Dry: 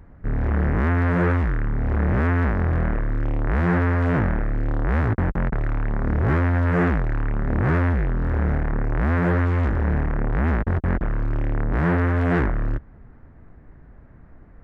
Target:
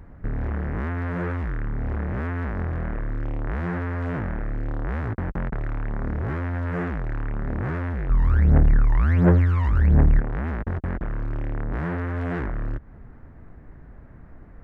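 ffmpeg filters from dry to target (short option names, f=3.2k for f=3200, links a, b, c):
-filter_complex "[0:a]acompressor=threshold=-26dB:ratio=6,asplit=3[a][b][c];[a]afade=t=out:st=8.09:d=0.02[d];[b]aphaser=in_gain=1:out_gain=1:delay=1.1:decay=0.79:speed=1.4:type=triangular,afade=t=in:st=8.09:d=0.02,afade=t=out:st=10.19:d=0.02[e];[c]afade=t=in:st=10.19:d=0.02[f];[d][e][f]amix=inputs=3:normalize=0,volume=2dB"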